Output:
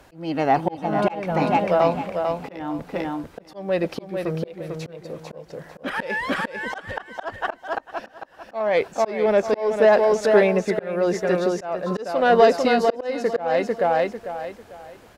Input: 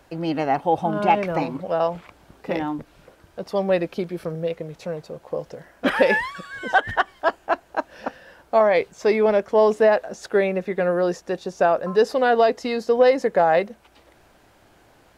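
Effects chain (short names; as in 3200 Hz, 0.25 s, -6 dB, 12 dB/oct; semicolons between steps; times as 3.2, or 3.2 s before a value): added harmonics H 3 -10 dB, 5 -19 dB, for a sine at -3.5 dBFS; feedback echo 0.447 s, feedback 29%, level -5.5 dB; auto swell 0.371 s; gain +8 dB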